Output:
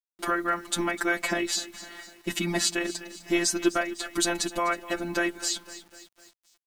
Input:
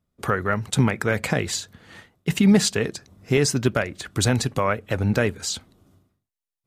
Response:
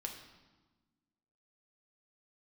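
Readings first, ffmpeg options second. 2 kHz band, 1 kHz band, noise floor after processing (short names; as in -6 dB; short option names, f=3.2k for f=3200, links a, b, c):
-1.5 dB, -1.5 dB, under -85 dBFS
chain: -filter_complex "[0:a]agate=range=-33dB:threshold=-49dB:ratio=3:detection=peak,afftfilt=real='hypot(re,im)*cos(PI*b)':imag='0':win_size=1024:overlap=0.75,aecho=1:1:252|504|756|1008:0.126|0.0617|0.0302|0.0148,asplit=2[a][b];[b]acompressor=threshold=-32dB:ratio=6,volume=-2.5dB[c];[a][c]amix=inputs=2:normalize=0,aecho=1:1:3.1:0.87,acrusher=bits=8:mix=0:aa=0.000001,equalizer=f=130:t=o:w=0.26:g=-14,volume=-2.5dB"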